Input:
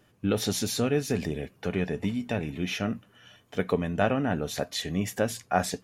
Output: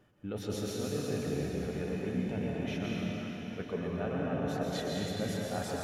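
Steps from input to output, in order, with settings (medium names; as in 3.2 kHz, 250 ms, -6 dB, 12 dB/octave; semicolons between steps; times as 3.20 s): treble shelf 2.7 kHz -9.5 dB; reverse; compression, threshold -33 dBFS, peak gain reduction 13.5 dB; reverse; plate-style reverb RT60 3.8 s, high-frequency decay 1×, pre-delay 110 ms, DRR -4.5 dB; trim -2 dB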